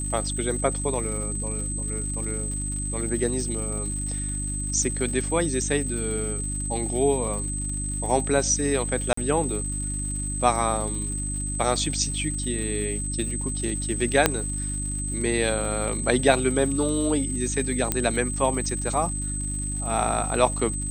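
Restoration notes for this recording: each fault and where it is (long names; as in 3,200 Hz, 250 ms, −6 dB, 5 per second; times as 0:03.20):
surface crackle 190 per second −35 dBFS
mains hum 50 Hz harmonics 6 −31 dBFS
whistle 8,200 Hz −30 dBFS
0:09.13–0:09.17: drop-out 44 ms
0:14.26: click −1 dBFS
0:17.92: click −6 dBFS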